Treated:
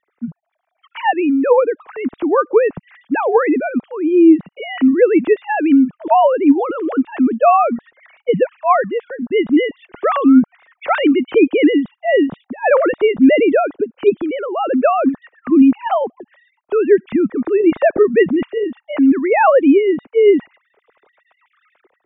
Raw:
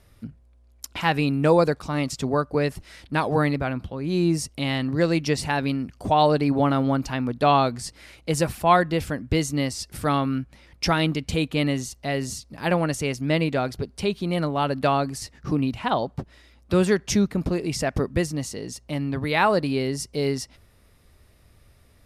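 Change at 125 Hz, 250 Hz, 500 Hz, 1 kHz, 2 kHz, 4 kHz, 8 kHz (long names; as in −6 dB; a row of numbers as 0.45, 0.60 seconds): −13.0 dB, +11.0 dB, +11.0 dB, +7.0 dB, +5.5 dB, −3.0 dB, below −40 dB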